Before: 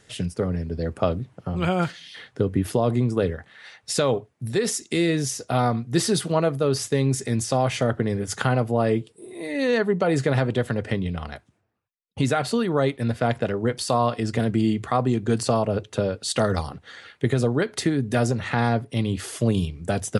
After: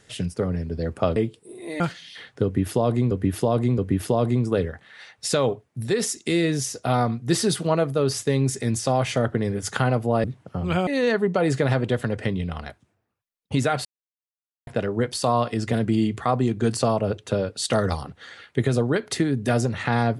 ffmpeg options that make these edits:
-filter_complex "[0:a]asplit=9[a][b][c][d][e][f][g][h][i];[a]atrim=end=1.162[j];[b]atrim=start=8.888:end=9.532[k];[c]atrim=start=1.788:end=3.102[l];[d]atrim=start=2.428:end=3.102[m];[e]atrim=start=2.428:end=8.892[n];[f]atrim=start=1.158:end=1.792[o];[g]atrim=start=9.528:end=12.51,asetpts=PTS-STARTPTS,afade=t=out:st=2.978:d=0.004:c=hsin[p];[h]atrim=start=12.51:end=13.33,asetpts=PTS-STARTPTS,volume=0[q];[i]atrim=start=13.33,asetpts=PTS-STARTPTS,afade=t=in:d=0.004:c=hsin[r];[j][k]acrossfade=d=0.004:c1=hsin:c2=hsin[s];[s][l]acrossfade=d=0.004:c1=hsin:c2=hsin[t];[t][m]acrossfade=d=0.004:c1=hsin:c2=hsin[u];[u][n]acrossfade=d=0.004:c1=hsin:c2=hsin[v];[v][o]acrossfade=d=0.004:c1=hsin:c2=hsin[w];[p][q][r]concat=n=3:v=0:a=1[x];[w][x]acrossfade=d=0.004:c1=hsin:c2=hsin"

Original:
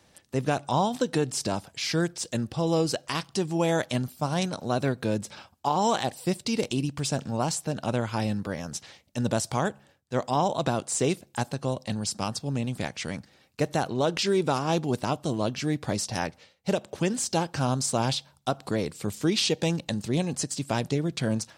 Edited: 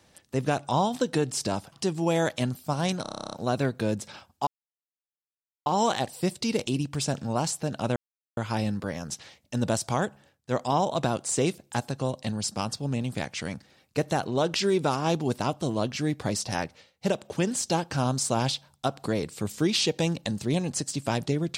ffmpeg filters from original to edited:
-filter_complex "[0:a]asplit=14[a][b][c][d][e][f][g][h][i][j][k][l][m][n];[a]atrim=end=1.722[o];[b]atrim=start=3.248:end=4.582[p];[c]atrim=start=4.548:end=4.582[q];[d]atrim=start=4.548:end=4.582[r];[e]atrim=start=4.548:end=4.582[s];[f]atrim=start=4.548:end=4.582[t];[g]atrim=start=4.548:end=4.582[u];[h]atrim=start=4.548:end=4.582[v];[i]atrim=start=4.548:end=4.582[w];[j]atrim=start=4.548:end=4.582[x];[k]atrim=start=4.548:end=4.582[y];[l]atrim=start=4.548:end=5.7,asetpts=PTS-STARTPTS,afade=t=out:st=1.148:d=0.004:c=hsin,apad=pad_dur=1.19[z];[m]atrim=start=5.7:end=8,asetpts=PTS-STARTPTS,afade=t=in:d=0.004:c=hsin,afade=t=out:st=2.296:d=0.004:c=hsin,apad=pad_dur=0.41[aa];[n]atrim=start=8,asetpts=PTS-STARTPTS,afade=t=in:d=0.004:c=hsin[ab];[o][p]acrossfade=d=0.004:c1=hsin:c2=hsin[ac];[ac][q]acrossfade=d=0.004:c1=hsin:c2=hsin[ad];[ad][r]acrossfade=d=0.004:c1=hsin:c2=hsin[ae];[ae][s]acrossfade=d=0.004:c1=hsin:c2=hsin[af];[af][t]acrossfade=d=0.004:c1=hsin:c2=hsin[ag];[ag][u]acrossfade=d=0.004:c1=hsin:c2=hsin[ah];[ah][v]acrossfade=d=0.004:c1=hsin:c2=hsin[ai];[ai][w]acrossfade=d=0.004:c1=hsin:c2=hsin[aj];[aj][x]acrossfade=d=0.004:c1=hsin:c2=hsin[ak];[ak][y]acrossfade=d=0.004:c1=hsin:c2=hsin[al];[z][aa][ab]concat=n=3:v=0:a=1[am];[al][am]acrossfade=d=0.004:c1=hsin:c2=hsin"

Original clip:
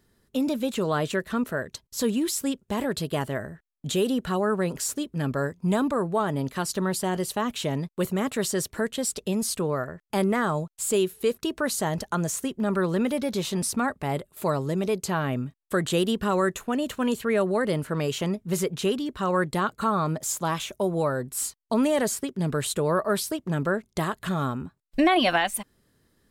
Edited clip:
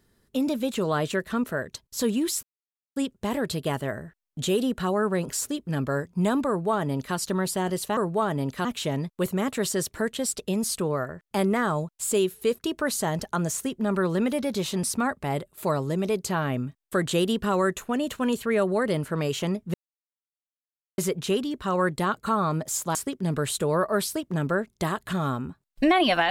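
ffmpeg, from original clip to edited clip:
-filter_complex "[0:a]asplit=6[a][b][c][d][e][f];[a]atrim=end=2.43,asetpts=PTS-STARTPTS,afade=t=out:st=2.426:d=0.004:c=hsin,apad=pad_dur=0.53[g];[b]atrim=start=2.43:end=7.442,asetpts=PTS-STARTPTS,afade=t=in:d=0.004:c=hsin[h];[c]atrim=start=5.948:end=6.632[i];[d]atrim=start=7.438:end=18.53,asetpts=PTS-STARTPTS,afade=t=out:st=11.088:d=0.004:c=hsin,apad=pad_dur=1.24[j];[e]atrim=start=18.53:end=20.502,asetpts=PTS-STARTPTS,afade=t=in:d=0.004:c=hsin[k];[f]atrim=start=22.108[l];[g][h]concat=n=2:v=0:a=1[m];[m][i]acrossfade=d=0.004:c1=hsin:c2=hsin[n];[j][k]concat=n=2:v=0:a=1[o];[n][o]acrossfade=d=0.004:c1=hsin:c2=hsin[p];[p][l]acrossfade=d=0.004:c1=hsin:c2=hsin"

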